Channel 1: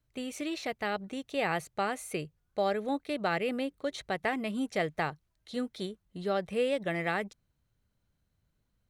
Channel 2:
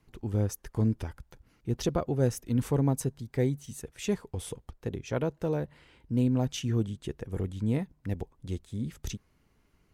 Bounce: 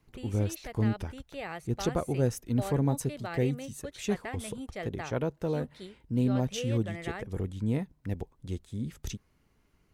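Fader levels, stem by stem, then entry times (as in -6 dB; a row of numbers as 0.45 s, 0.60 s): -8.5 dB, -1.0 dB; 0.00 s, 0.00 s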